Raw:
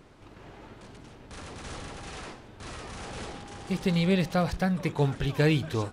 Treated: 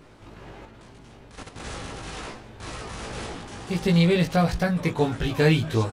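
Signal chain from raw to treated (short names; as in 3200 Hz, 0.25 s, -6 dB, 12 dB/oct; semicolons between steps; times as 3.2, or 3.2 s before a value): doubler 18 ms -2 dB; 0.65–1.6 level quantiser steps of 10 dB; gain +2.5 dB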